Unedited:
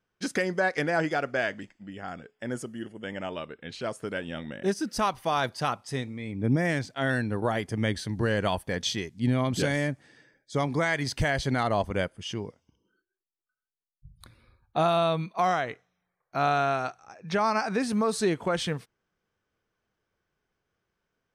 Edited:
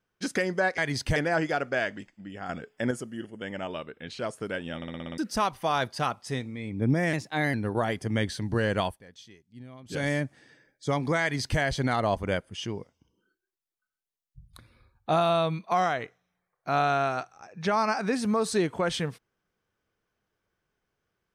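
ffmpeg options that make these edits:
-filter_complex "[0:a]asplit=16[s0][s1][s2][s3][s4][s5][s6][s7][s8][s9][s10][s11][s12][s13][s14][s15];[s0]atrim=end=0.782[s16];[s1]atrim=start=10.888:end=11.272[s17];[s2]atrim=start=0.778:end=2.112[s18];[s3]atrim=start=2.108:end=2.532,asetpts=PTS-STARTPTS,volume=2[s19];[s4]atrim=start=2.528:end=4.442[s20];[s5]atrim=start=4.378:end=4.442[s21];[s6]atrim=start=4.378:end=4.442[s22];[s7]atrim=start=4.378:end=4.442[s23];[s8]atrim=start=4.378:end=4.442[s24];[s9]atrim=start=4.378:end=4.442[s25];[s10]atrim=start=4.378:end=4.442[s26];[s11]atrim=start=4.798:end=6.754[s27];[s12]atrim=start=6.75:end=7.21,asetpts=PTS-STARTPTS,asetrate=49833,aresample=44100,atrim=end_sample=17952,asetpts=PTS-STARTPTS[s28];[s13]atrim=start=7.206:end=8.69,asetpts=PTS-STARTPTS,afade=t=out:st=1.294:d=0.19:silence=0.0944061[s29];[s14]atrim=start=8.69:end=9.55,asetpts=PTS-STARTPTS,volume=0.0944[s30];[s15]atrim=start=9.55,asetpts=PTS-STARTPTS,afade=t=in:d=0.19:silence=0.0944061[s31];[s16][s17]acrossfade=d=0.004:c1=hsin:c2=hsin[s32];[s32][s18]acrossfade=d=0.004:c1=hsin:c2=hsin[s33];[s33][s19]acrossfade=d=0.004:c1=hsin:c2=hsin[s34];[s34][s20]acrossfade=d=0.004:c1=hsin:c2=hsin[s35];[s35][s21]acrossfade=d=0.004:c1=hsin:c2=hsin[s36];[s36][s22]acrossfade=d=0.004:c1=hsin:c2=hsin[s37];[s37][s23]acrossfade=d=0.004:c1=hsin:c2=hsin[s38];[s38][s24]acrossfade=d=0.004:c1=hsin:c2=hsin[s39];[s39][s25]acrossfade=d=0.004:c1=hsin:c2=hsin[s40];[s40][s26]acrossfade=d=0.004:c1=hsin:c2=hsin[s41];[s41][s27]acrossfade=d=0.004:c1=hsin:c2=hsin[s42];[s42][s28]acrossfade=d=0.004:c1=hsin:c2=hsin[s43];[s29][s30][s31]concat=n=3:v=0:a=1[s44];[s43][s44]acrossfade=d=0.004:c1=hsin:c2=hsin"

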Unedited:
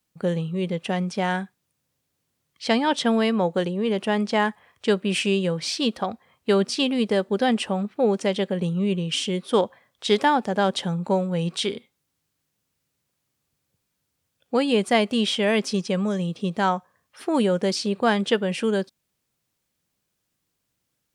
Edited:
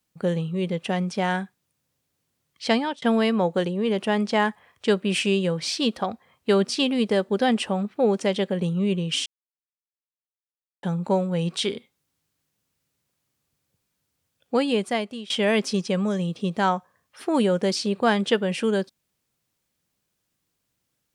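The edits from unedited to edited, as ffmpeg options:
-filter_complex "[0:a]asplit=5[s0][s1][s2][s3][s4];[s0]atrim=end=3.02,asetpts=PTS-STARTPTS,afade=t=out:st=2.74:d=0.28[s5];[s1]atrim=start=3.02:end=9.26,asetpts=PTS-STARTPTS,afade=t=in:d=0.004:c=hsin,afade=t=out:st=6.236:d=0.004:c=hsin[s6];[s2]atrim=start=9.26:end=10.83,asetpts=PTS-STARTPTS,volume=0[s7];[s3]atrim=start=10.83:end=15.3,asetpts=PTS-STARTPTS,afade=t=in:d=0.004:c=hsin,afade=t=out:st=3.72:d=0.75:silence=0.0841395[s8];[s4]atrim=start=15.3,asetpts=PTS-STARTPTS,afade=t=in:d=0.004:c=hsin:silence=0.0841395[s9];[s5][s6][s7][s8][s9]concat=n=5:v=0:a=1"

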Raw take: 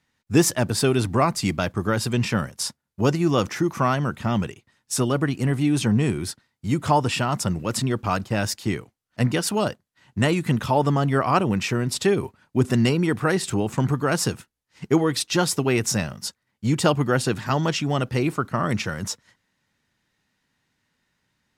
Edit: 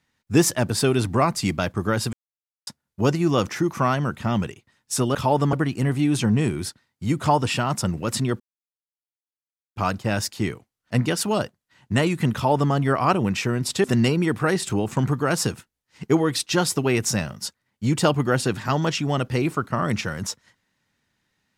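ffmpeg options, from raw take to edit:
-filter_complex "[0:a]asplit=7[s0][s1][s2][s3][s4][s5][s6];[s0]atrim=end=2.13,asetpts=PTS-STARTPTS,afade=t=out:st=2.126:d=0.004:c=hsin[s7];[s1]atrim=start=2.13:end=2.67,asetpts=PTS-STARTPTS,volume=0[s8];[s2]atrim=start=2.67:end=5.152,asetpts=PTS-STARTPTS,afade=t=in:d=0.004:c=hsin[s9];[s3]atrim=start=10.598:end=10.982[s10];[s4]atrim=start=5.148:end=8.02,asetpts=PTS-STARTPTS,afade=t=out:st=2.868:d=0.004:c=hsin,apad=pad_dur=1.36[s11];[s5]atrim=start=8.02:end=12.102,asetpts=PTS-STARTPTS,afade=t=in:d=0.004:c=hsin[s12];[s6]atrim=start=12.648[s13];[s7][s8][s9]concat=n=3:v=0:a=1[s14];[s14][s10]acrossfade=d=0.004:c1=hsin:c2=hsin[s15];[s11][s12]concat=n=2:v=0:a=1[s16];[s15][s16]acrossfade=d=0.004:c1=hsin:c2=hsin[s17];[s17][s13]acrossfade=d=0.004:c1=hsin:c2=hsin"

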